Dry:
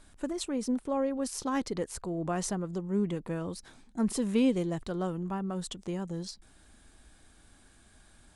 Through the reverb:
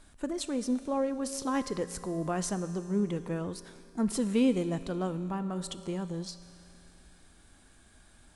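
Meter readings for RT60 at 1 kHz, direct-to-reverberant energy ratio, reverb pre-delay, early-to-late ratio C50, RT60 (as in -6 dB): 2.8 s, 11.0 dB, 5 ms, 12.0 dB, 2.8 s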